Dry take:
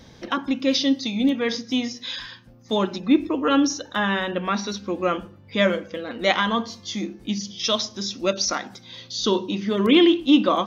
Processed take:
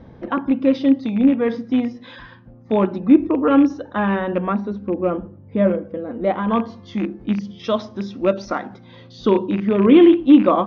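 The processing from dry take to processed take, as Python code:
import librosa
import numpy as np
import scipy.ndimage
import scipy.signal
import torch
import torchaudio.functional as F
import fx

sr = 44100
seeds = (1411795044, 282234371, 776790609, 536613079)

y = fx.rattle_buzz(x, sr, strikes_db=-28.0, level_db=-19.0)
y = fx.bessel_lowpass(y, sr, hz=fx.steps((0.0, 940.0), (4.52, 550.0), (6.49, 1100.0)), order=2)
y = F.gain(torch.from_numpy(y), 6.0).numpy()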